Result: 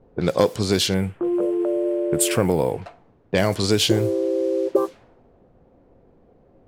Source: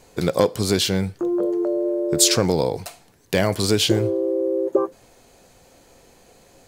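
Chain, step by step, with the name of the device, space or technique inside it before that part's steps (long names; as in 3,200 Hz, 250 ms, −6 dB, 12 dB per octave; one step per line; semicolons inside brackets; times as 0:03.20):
cassette deck with a dynamic noise filter (white noise bed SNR 25 dB; low-pass that shuts in the quiet parts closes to 440 Hz, open at −15.5 dBFS)
0:00.94–0:02.82: flat-topped bell 5,000 Hz −14.5 dB 1.1 octaves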